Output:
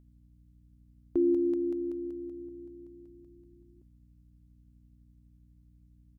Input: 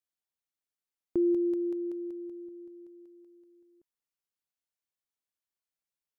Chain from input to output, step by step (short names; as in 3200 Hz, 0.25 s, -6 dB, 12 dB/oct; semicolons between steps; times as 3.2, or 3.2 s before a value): hum 60 Hz, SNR 23 dB; harmoniser -4 st -9 dB